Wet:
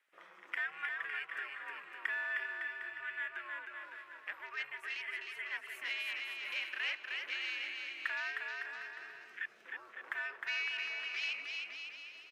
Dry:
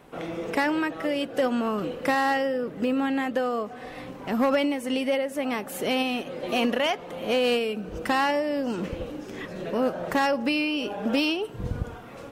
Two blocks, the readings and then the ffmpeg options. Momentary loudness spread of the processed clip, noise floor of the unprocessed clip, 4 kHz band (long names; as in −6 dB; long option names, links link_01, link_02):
10 LU, −41 dBFS, −10.5 dB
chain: -filter_complex "[0:a]afwtdn=0.0158,acompressor=threshold=-29dB:ratio=6,afreqshift=-150,highpass=frequency=1800:width_type=q:width=2.5,asplit=2[link_01][link_02];[link_02]aecho=0:1:310|558|756.4|915.1|1042:0.631|0.398|0.251|0.158|0.1[link_03];[link_01][link_03]amix=inputs=2:normalize=0,volume=-5.5dB"